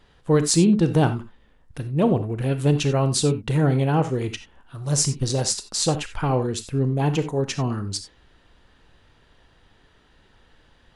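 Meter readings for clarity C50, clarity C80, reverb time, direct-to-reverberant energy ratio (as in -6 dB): 12.0 dB, 16.5 dB, no single decay rate, 9.5 dB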